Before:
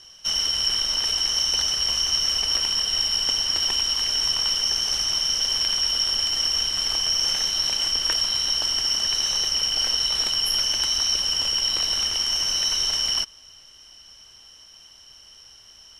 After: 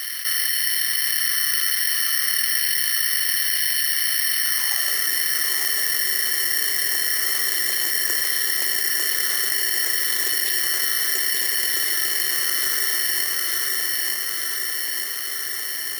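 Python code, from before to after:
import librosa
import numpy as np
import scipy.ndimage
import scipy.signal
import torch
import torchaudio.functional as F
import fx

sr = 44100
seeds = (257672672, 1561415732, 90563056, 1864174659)

p1 = fx.filter_sweep_highpass(x, sr, from_hz=1900.0, to_hz=370.0, start_s=4.38, end_s=5.01, q=5.5)
p2 = p1 + fx.echo_feedback(p1, sr, ms=898, feedback_pct=41, wet_db=-4, dry=0)
p3 = (np.kron(p2[::6], np.eye(6)[0]) * 6)[:len(p2)]
p4 = fx.env_flatten(p3, sr, amount_pct=70)
y = F.gain(torch.from_numpy(p4), -11.5).numpy()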